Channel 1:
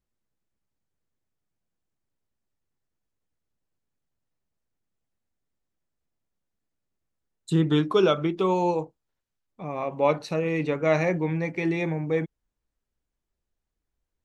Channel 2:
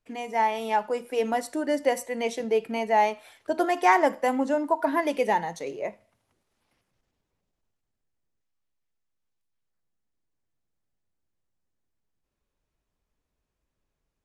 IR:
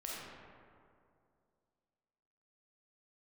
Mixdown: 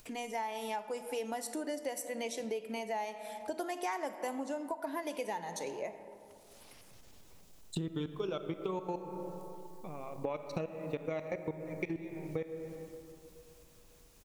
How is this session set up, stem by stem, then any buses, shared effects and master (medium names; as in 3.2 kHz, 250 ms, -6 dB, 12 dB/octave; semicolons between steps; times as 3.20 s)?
-2.0 dB, 0.25 s, send -8.5 dB, transient shaper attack +11 dB, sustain -5 dB; level held to a coarse grid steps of 22 dB
-5.5 dB, 0.00 s, send -12 dB, treble shelf 3.9 kHz +10.5 dB; upward compressor, threshold -37 dBFS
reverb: on, RT60 2.4 s, pre-delay 5 ms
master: peaking EQ 1.7 kHz -2.5 dB; compression 5:1, threshold -35 dBFS, peak gain reduction 14.5 dB